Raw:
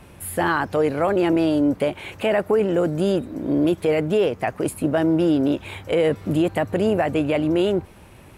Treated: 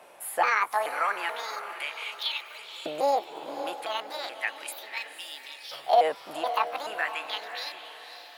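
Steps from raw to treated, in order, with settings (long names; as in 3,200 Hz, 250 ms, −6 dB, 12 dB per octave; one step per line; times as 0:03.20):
pitch shifter gated in a rhythm +6 semitones, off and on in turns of 429 ms
auto-filter high-pass saw up 0.35 Hz 600–4,800 Hz
feedback delay with all-pass diffusion 535 ms, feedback 42%, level −10 dB
level −4.5 dB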